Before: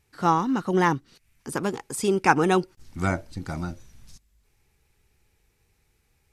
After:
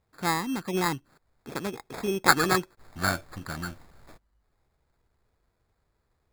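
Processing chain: time-frequency box 2.26–4.14 s, 1.1–10 kHz +10 dB; sample-and-hold 15×; trim -6 dB

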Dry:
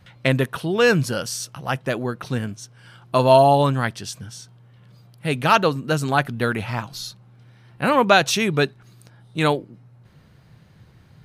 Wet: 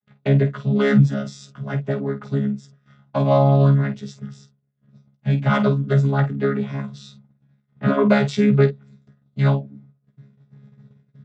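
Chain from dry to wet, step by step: vocoder on a held chord bare fifth, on C#3; gate -49 dBFS, range -29 dB; early reflections 15 ms -7 dB, 49 ms -11.5 dB

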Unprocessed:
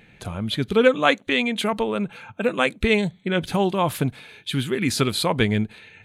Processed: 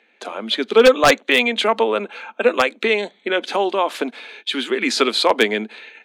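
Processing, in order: gate -47 dBFS, range -11 dB; elliptic high-pass 220 Hz, stop band 40 dB; three-band isolator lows -19 dB, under 290 Hz, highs -20 dB, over 7 kHz; 2.61–4.84 s: compression 2.5:1, threshold -24 dBFS, peak gain reduction 5.5 dB; wavefolder -11.5 dBFS; trim +8 dB

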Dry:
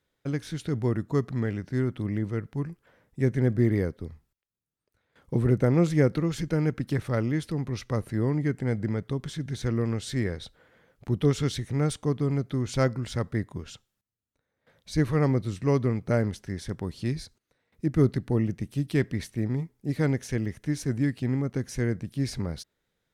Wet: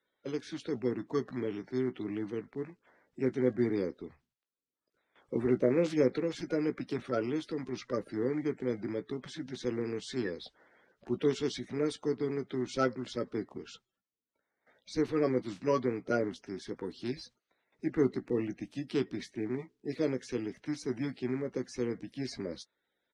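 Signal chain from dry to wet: coarse spectral quantiser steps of 30 dB; three-band isolator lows -15 dB, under 230 Hz, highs -22 dB, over 6.9 kHz; doubling 16 ms -10 dB; trim -3 dB

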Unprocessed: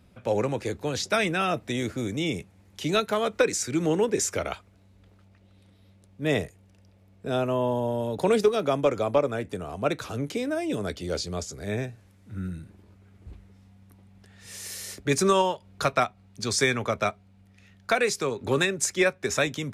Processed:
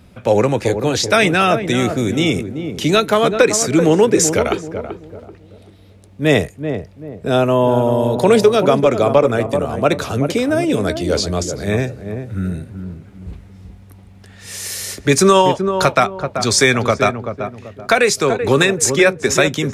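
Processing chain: filtered feedback delay 384 ms, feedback 37%, low-pass 830 Hz, level -7 dB; loudness maximiser +12.5 dB; trim -1 dB

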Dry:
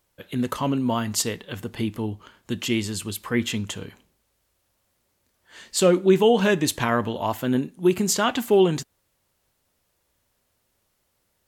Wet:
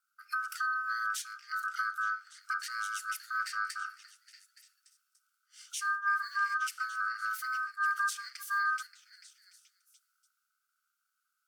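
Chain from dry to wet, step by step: companding laws mixed up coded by mu; brick-wall FIR band-stop 200–2800 Hz; spectral noise reduction 7 dB; compression 8:1, threshold -37 dBFS, peak gain reduction 17.5 dB; resonant low shelf 430 Hz +9 dB, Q 3; on a send: repeats whose band climbs or falls 290 ms, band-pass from 1.3 kHz, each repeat 0.7 oct, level -2 dB; on the sum: ring modulator 1.4 kHz; three bands expanded up and down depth 40%

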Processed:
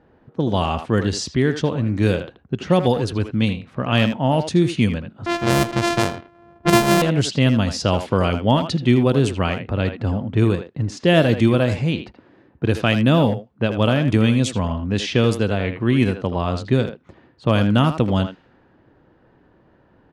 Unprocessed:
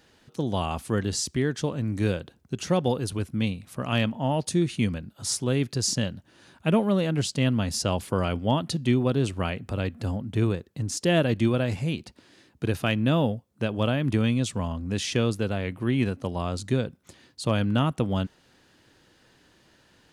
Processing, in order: 5.26–7.02 s: sorted samples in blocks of 128 samples; level-controlled noise filter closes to 990 Hz, open at -19 dBFS; speakerphone echo 80 ms, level -8 dB; trim +7 dB

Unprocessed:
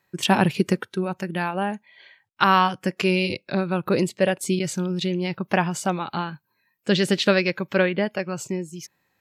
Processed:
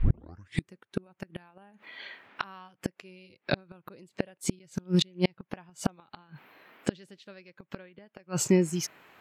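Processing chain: tape start-up on the opening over 0.70 s; band noise 190–2500 Hz -63 dBFS; inverted gate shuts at -18 dBFS, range -36 dB; trim +6 dB

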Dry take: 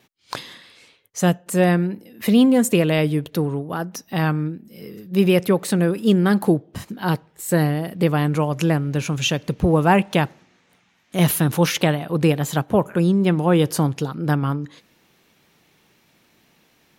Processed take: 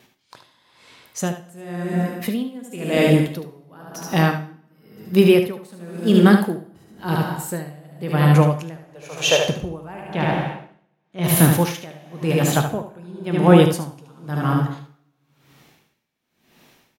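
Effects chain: 8.76–9.47 s: resonant low shelf 340 Hz -13.5 dB, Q 3; 10.03–11.24 s: low-pass 4.1 kHz 12 dB/octave; delay 74 ms -5 dB; plate-style reverb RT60 1.6 s, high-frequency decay 0.8×, DRR 4.5 dB; logarithmic tremolo 0.96 Hz, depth 27 dB; trim +4 dB

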